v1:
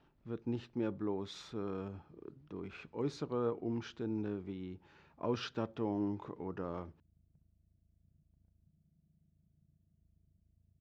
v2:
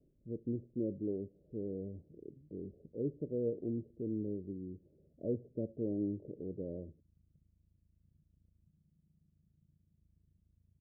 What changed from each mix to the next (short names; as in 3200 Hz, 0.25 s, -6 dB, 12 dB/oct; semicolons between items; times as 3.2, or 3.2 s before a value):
master: add steep low-pass 600 Hz 72 dB/oct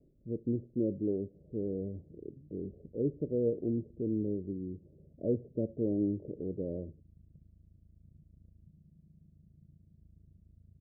speech +5.0 dB; background +11.5 dB